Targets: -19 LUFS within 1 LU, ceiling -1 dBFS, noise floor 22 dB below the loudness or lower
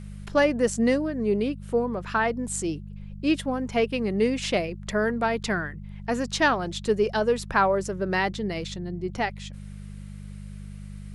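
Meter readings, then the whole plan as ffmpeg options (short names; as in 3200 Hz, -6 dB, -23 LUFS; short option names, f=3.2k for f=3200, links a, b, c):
hum 50 Hz; harmonics up to 200 Hz; hum level -36 dBFS; loudness -26.0 LUFS; peak -9.0 dBFS; loudness target -19.0 LUFS
-> -af "bandreject=f=50:t=h:w=4,bandreject=f=100:t=h:w=4,bandreject=f=150:t=h:w=4,bandreject=f=200:t=h:w=4"
-af "volume=7dB"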